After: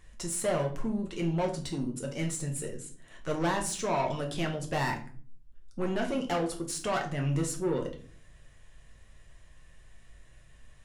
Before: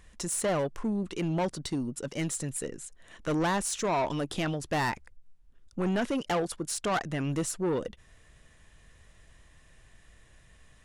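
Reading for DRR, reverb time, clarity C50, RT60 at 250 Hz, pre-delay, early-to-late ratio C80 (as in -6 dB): 1.0 dB, 0.45 s, 10.5 dB, 0.75 s, 5 ms, 15.5 dB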